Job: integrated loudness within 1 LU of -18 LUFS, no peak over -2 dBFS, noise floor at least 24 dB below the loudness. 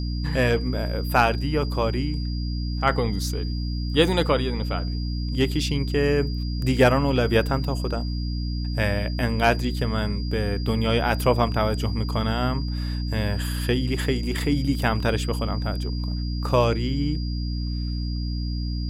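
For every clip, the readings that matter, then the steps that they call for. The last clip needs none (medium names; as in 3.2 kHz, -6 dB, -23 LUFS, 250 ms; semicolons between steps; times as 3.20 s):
hum 60 Hz; highest harmonic 300 Hz; hum level -25 dBFS; steady tone 4.8 kHz; tone level -39 dBFS; loudness -24.5 LUFS; peak level -5.0 dBFS; loudness target -18.0 LUFS
-> de-hum 60 Hz, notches 5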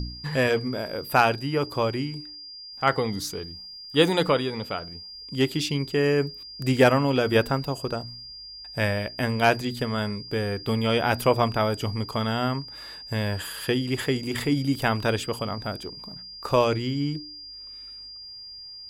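hum not found; steady tone 4.8 kHz; tone level -39 dBFS
-> band-stop 4.8 kHz, Q 30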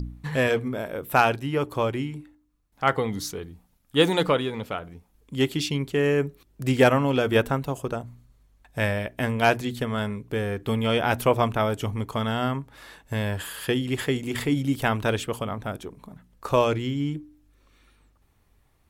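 steady tone not found; loudness -25.5 LUFS; peak level -5.5 dBFS; loudness target -18.0 LUFS
-> trim +7.5 dB; peak limiter -2 dBFS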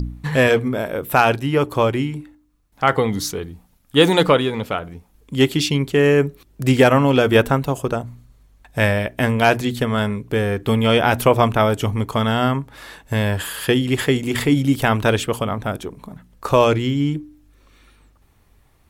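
loudness -18.5 LUFS; peak level -2.0 dBFS; noise floor -57 dBFS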